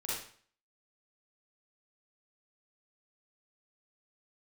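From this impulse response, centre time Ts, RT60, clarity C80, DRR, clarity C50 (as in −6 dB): 67 ms, 0.50 s, 4.0 dB, −8.0 dB, −2.5 dB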